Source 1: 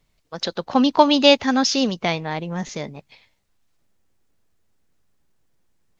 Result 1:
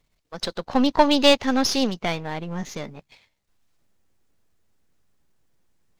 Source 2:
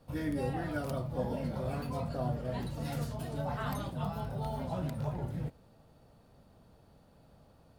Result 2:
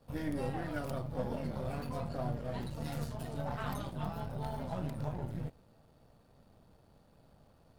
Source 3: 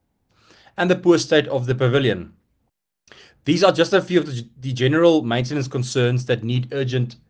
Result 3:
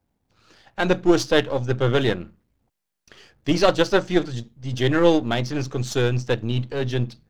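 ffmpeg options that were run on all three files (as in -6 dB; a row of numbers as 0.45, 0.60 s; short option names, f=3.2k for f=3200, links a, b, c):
-af "aeval=exprs='if(lt(val(0),0),0.447*val(0),val(0))':c=same"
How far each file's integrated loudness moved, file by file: -2.5, -2.5, -2.5 LU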